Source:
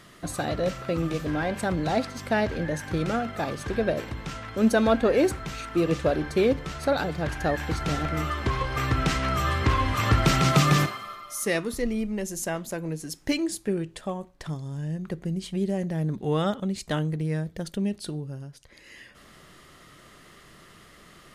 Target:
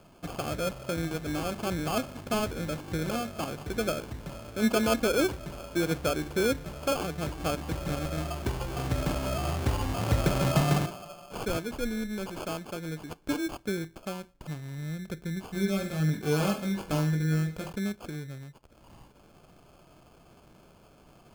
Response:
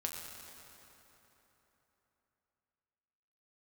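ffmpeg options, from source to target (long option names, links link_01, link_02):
-filter_complex "[0:a]bandreject=frequency=1100:width=6.6,acrusher=samples=23:mix=1:aa=0.000001,asettb=1/sr,asplit=3[link_01][link_02][link_03];[link_01]atrim=end=15.464[link_04];[link_02]atrim=start=15.46:end=17.73,asetpts=PTS-STARTPTS,afade=type=in:duration=0.004:curve=qsin,afade=type=out:start_time=2.266:duration=0.004:curve=qsin,aecho=1:1:20|45|76.25|115.3|164.1:0.631|0.398|0.251|0.158|0.1,atrim=end_sample=100107[link_05];[link_03]atrim=start=17.726[link_06];[link_04][link_05]acrossfade=duration=0.004:curve1=hsin:curve2=qsin[link_07];[link_07][link_06]acrossfade=duration=0.004:curve1=qsin:curve2=hsin,volume=-4.5dB"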